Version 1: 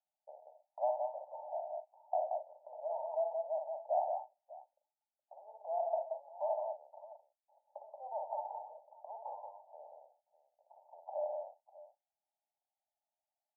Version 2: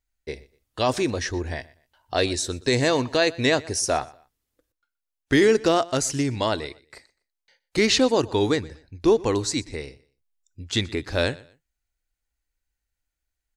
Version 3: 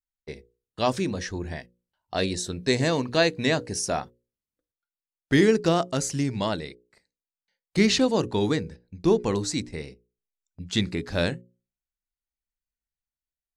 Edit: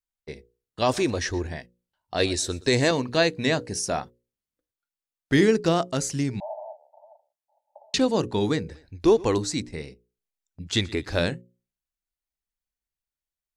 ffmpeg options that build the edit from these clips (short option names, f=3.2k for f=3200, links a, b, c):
-filter_complex "[1:a]asplit=4[a][b][c][d];[2:a]asplit=6[e][f][g][h][i][j];[e]atrim=end=0.822[k];[a]atrim=start=0.818:end=1.472[l];[f]atrim=start=1.468:end=2.202[m];[b]atrim=start=2.198:end=2.912[n];[g]atrim=start=2.908:end=6.402[o];[0:a]atrim=start=6.398:end=7.942[p];[h]atrim=start=7.938:end=8.692[q];[c]atrim=start=8.688:end=9.382[r];[i]atrim=start=9.378:end=10.672[s];[d]atrim=start=10.668:end=11.192[t];[j]atrim=start=11.188[u];[k][l]acrossfade=d=0.004:c1=hsin:c2=hsin[v];[v][m]acrossfade=d=0.004:c1=hsin:c2=hsin[w];[w][n]acrossfade=d=0.004:c1=hsin:c2=hsin[x];[x][o]acrossfade=d=0.004:c1=hsin:c2=hsin[y];[y][p]acrossfade=d=0.004:c1=hsin:c2=hsin[z];[z][q]acrossfade=d=0.004:c1=hsin:c2=hsin[aa];[aa][r]acrossfade=d=0.004:c1=hsin:c2=hsin[ab];[ab][s]acrossfade=d=0.004:c1=hsin:c2=hsin[ac];[ac][t]acrossfade=d=0.004:c1=hsin:c2=hsin[ad];[ad][u]acrossfade=d=0.004:c1=hsin:c2=hsin"